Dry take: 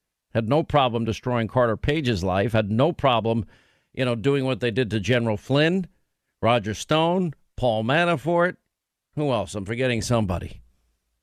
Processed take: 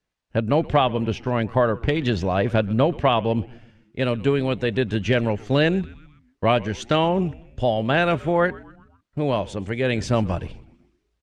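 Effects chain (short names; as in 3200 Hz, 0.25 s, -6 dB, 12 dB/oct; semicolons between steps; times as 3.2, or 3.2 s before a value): air absorption 84 m; frequency-shifting echo 0.126 s, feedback 52%, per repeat -110 Hz, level -21 dB; gain +1 dB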